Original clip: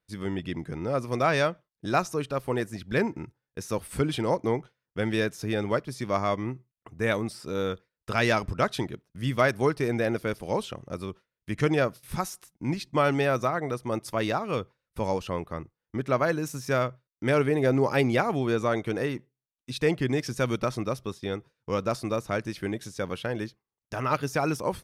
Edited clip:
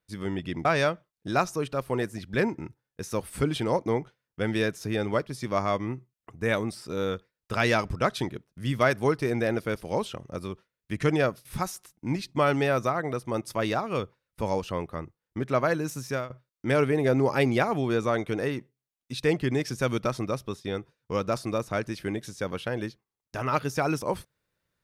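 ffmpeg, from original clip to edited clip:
-filter_complex "[0:a]asplit=3[a][b][c];[a]atrim=end=0.652[d];[b]atrim=start=1.228:end=16.88,asetpts=PTS-STARTPTS,afade=t=out:st=15.402:d=0.25:silence=0.11885[e];[c]atrim=start=16.88,asetpts=PTS-STARTPTS,afade=t=in:d=0.004:c=hsin:silence=0.11885[f];[e][f]concat=n=2:v=0:a=1[g];[d][g]acrossfade=d=0.004:c1=hsin:c2=hsin"

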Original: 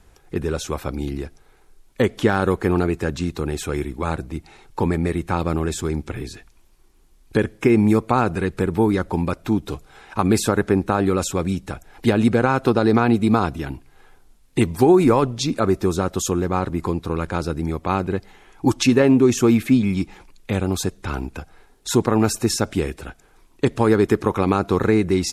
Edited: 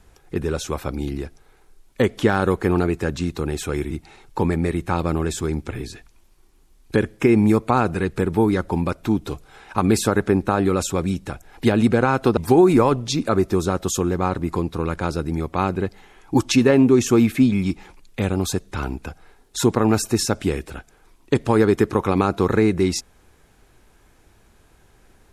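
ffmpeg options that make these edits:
-filter_complex "[0:a]asplit=3[a][b][c];[a]atrim=end=3.912[d];[b]atrim=start=4.318:end=12.782[e];[c]atrim=start=14.678[f];[d][e]acrossfade=d=0.004:c1=hsin:c2=hsin[g];[g][f]acrossfade=d=0.004:c1=hsin:c2=hsin"

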